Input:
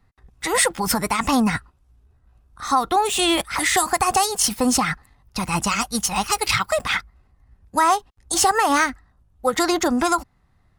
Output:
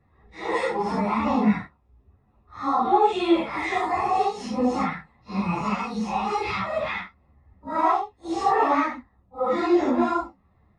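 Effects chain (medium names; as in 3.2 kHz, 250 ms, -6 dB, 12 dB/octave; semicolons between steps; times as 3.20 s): phase randomisation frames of 200 ms; in parallel at +0.5 dB: compression, threshold -36 dBFS, peak gain reduction 21.5 dB; on the sum: tape spacing loss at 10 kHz 36 dB; comb of notches 1.5 kHz; three-phase chorus; trim +3 dB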